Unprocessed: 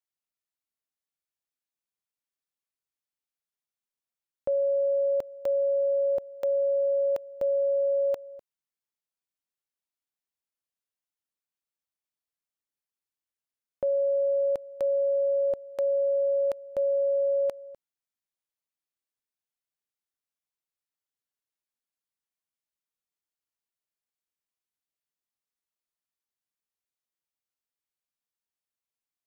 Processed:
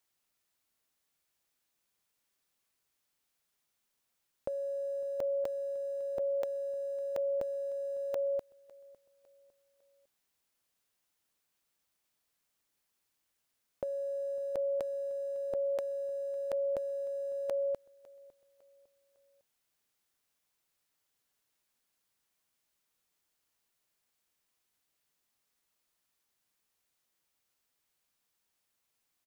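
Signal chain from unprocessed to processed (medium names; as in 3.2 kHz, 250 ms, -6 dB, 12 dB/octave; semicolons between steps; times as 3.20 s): in parallel at -6 dB: small samples zeroed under -37 dBFS; on the sum: compressor with a negative ratio -30 dBFS, ratio -0.5; feedback delay 554 ms, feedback 40%, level -22.5 dB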